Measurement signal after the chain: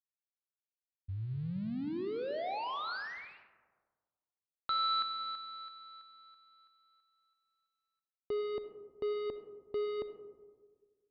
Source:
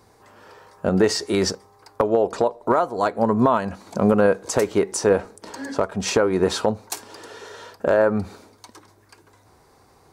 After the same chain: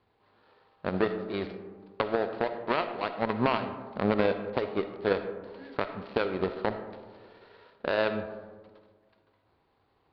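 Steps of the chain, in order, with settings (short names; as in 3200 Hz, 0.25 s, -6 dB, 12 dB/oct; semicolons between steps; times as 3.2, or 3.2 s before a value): switching dead time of 0.15 ms; added harmonics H 3 -13 dB, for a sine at -6 dBFS; elliptic low-pass 4400 Hz, stop band 40 dB; digital reverb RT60 1.6 s, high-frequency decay 0.3×, pre-delay 20 ms, DRR 8.5 dB; gain -4.5 dB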